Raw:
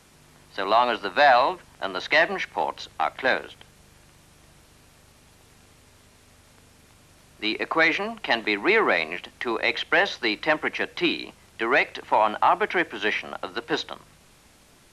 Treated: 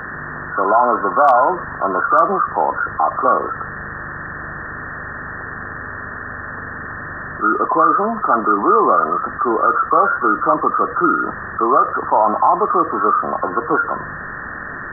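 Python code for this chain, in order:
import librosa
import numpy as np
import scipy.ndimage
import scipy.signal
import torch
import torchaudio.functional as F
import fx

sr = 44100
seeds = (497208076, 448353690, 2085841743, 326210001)

y = fx.freq_compress(x, sr, knee_hz=1000.0, ratio=4.0)
y = np.clip(y, -10.0 ** (-7.0 / 20.0), 10.0 ** (-7.0 / 20.0))
y = fx.low_shelf(y, sr, hz=73.0, db=-6.0)
y = fx.env_flatten(y, sr, amount_pct=50)
y = y * librosa.db_to_amplitude(3.5)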